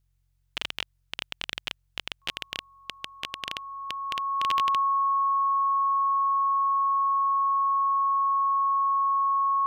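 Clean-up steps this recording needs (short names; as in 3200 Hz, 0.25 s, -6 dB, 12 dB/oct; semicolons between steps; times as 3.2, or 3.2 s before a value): de-hum 45.2 Hz, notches 3; notch 1100 Hz, Q 30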